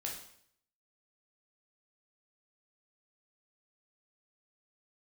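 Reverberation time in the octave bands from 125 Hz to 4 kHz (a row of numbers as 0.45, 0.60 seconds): 0.75, 0.65, 0.65, 0.65, 0.60, 0.60 seconds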